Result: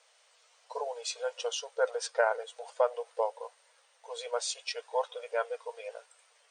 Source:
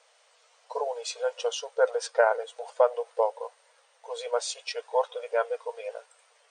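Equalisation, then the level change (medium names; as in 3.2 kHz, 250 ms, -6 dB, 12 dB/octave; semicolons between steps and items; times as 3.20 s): tilt shelf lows -3 dB, about 1.3 kHz; -3.5 dB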